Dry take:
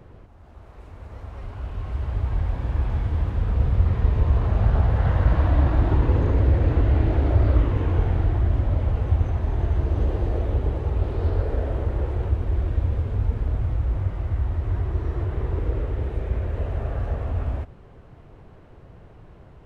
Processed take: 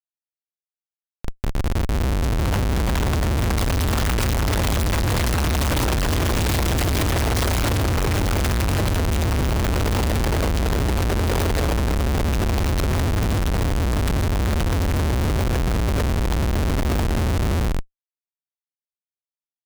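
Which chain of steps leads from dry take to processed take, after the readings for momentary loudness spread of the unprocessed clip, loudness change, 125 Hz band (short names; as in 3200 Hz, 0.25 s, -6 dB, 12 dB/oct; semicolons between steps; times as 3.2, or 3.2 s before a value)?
8 LU, +2.0 dB, +0.5 dB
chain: modulation noise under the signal 10 dB; loudspeakers at several distances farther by 34 m -9 dB, 57 m -4 dB; Schmitt trigger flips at -24 dBFS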